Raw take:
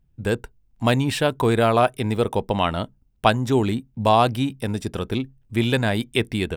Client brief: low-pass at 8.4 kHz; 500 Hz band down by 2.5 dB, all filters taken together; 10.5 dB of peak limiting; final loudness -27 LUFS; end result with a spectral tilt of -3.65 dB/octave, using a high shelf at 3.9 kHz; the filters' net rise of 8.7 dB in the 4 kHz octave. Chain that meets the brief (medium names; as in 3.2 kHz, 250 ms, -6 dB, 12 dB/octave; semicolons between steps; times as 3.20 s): low-pass 8.4 kHz; peaking EQ 500 Hz -3.5 dB; treble shelf 3.9 kHz +5.5 dB; peaking EQ 4 kHz +8 dB; trim -4 dB; peak limiter -13 dBFS